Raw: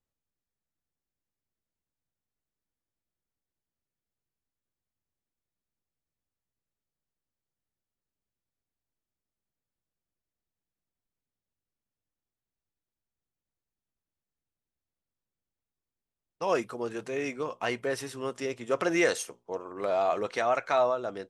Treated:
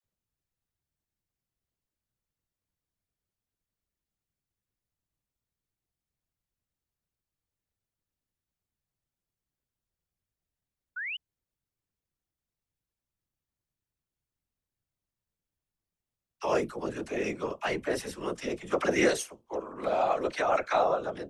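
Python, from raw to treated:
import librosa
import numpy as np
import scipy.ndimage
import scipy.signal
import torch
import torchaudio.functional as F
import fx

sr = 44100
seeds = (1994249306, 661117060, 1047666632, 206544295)

y = fx.dispersion(x, sr, late='lows', ms=42.0, hz=570.0)
y = fx.whisperise(y, sr, seeds[0])
y = fx.spec_paint(y, sr, seeds[1], shape='rise', start_s=10.96, length_s=0.21, low_hz=1400.0, high_hz=3100.0, level_db=-35.0)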